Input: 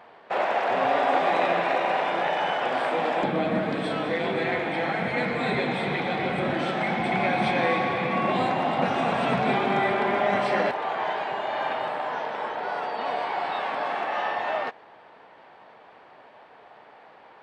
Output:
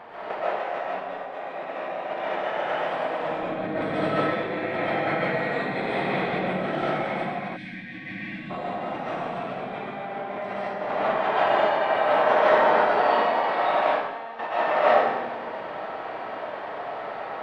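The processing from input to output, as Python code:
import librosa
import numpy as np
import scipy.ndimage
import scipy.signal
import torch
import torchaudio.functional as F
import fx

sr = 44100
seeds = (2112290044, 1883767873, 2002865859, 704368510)

p1 = fx.high_shelf(x, sr, hz=3500.0, db=-9.0)
p2 = p1 + fx.echo_split(p1, sr, split_hz=400.0, low_ms=194, high_ms=96, feedback_pct=52, wet_db=-4.0, dry=0)
p3 = fx.over_compress(p2, sr, threshold_db=-31.0, ratio=-0.5)
p4 = fx.comb_fb(p3, sr, f0_hz=230.0, decay_s=0.59, harmonics='all', damping=0.0, mix_pct=90, at=(13.83, 14.38), fade=0.02)
p5 = fx.rev_freeverb(p4, sr, rt60_s=0.8, hf_ratio=0.9, predelay_ms=95, drr_db=-8.5)
p6 = fx.spec_box(p5, sr, start_s=7.56, length_s=0.94, low_hz=330.0, high_hz=1500.0, gain_db=-20)
y = F.gain(torch.from_numpy(p6), -1.5).numpy()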